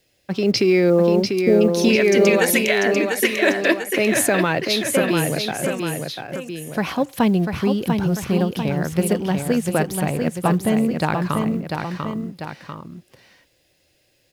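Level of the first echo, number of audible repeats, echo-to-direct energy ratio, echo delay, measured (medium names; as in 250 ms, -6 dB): -5.0 dB, 2, -4.0 dB, 694 ms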